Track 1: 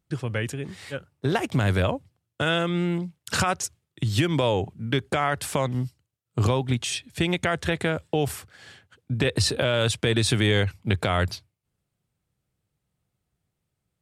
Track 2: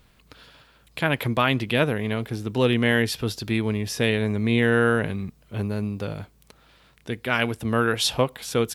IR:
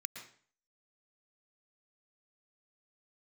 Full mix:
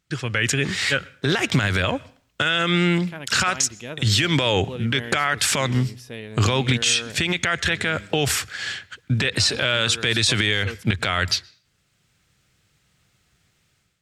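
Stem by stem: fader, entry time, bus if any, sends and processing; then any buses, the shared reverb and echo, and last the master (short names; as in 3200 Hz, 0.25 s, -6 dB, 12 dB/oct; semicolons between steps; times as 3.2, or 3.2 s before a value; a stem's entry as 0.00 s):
0.0 dB, 0.00 s, send -18.5 dB, AGC gain up to 11.5 dB; band shelf 3100 Hz +10 dB 2.8 oct; compressor, threshold -13 dBFS, peak gain reduction 9.5 dB
-13.5 dB, 2.10 s, no send, dry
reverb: on, RT60 0.45 s, pre-delay 0.107 s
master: limiter -9 dBFS, peak gain reduction 10.5 dB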